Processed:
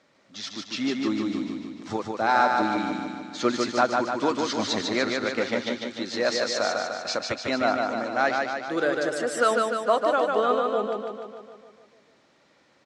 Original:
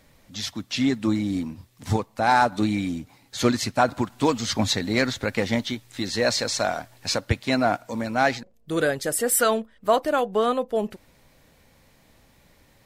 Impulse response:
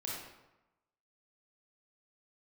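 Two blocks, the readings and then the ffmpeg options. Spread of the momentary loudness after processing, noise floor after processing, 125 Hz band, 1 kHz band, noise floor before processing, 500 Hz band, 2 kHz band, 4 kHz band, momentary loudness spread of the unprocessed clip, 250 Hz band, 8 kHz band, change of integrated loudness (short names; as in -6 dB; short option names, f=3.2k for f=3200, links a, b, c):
11 LU, -62 dBFS, -12.5 dB, 0.0 dB, -59 dBFS, 0.0 dB, 0.0 dB, -2.5 dB, 10 LU, -3.0 dB, -8.0 dB, -1.5 dB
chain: -af "highpass=230,equalizer=f=360:t=q:w=4:g=4,equalizer=f=590:t=q:w=4:g=3,equalizer=f=1.3k:t=q:w=4:g=7,lowpass=f=6.6k:w=0.5412,lowpass=f=6.6k:w=1.3066,aecho=1:1:149|298|447|596|745|894|1043|1192|1341:0.668|0.401|0.241|0.144|0.0866|0.052|0.0312|0.0187|0.0112,volume=-4.5dB"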